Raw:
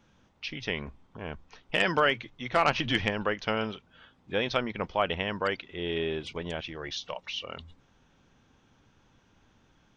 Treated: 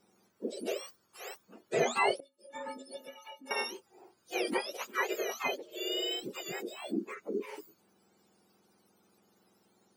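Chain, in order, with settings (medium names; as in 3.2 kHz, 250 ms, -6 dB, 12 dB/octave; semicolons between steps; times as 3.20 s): spectrum inverted on a logarithmic axis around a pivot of 1.1 kHz; 2.20–3.51 s: inharmonic resonator 260 Hz, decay 0.27 s, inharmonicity 0.03; trim -2 dB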